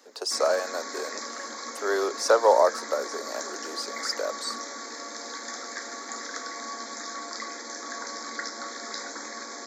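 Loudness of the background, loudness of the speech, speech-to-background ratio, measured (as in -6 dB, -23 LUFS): -35.5 LUFS, -26.5 LUFS, 9.0 dB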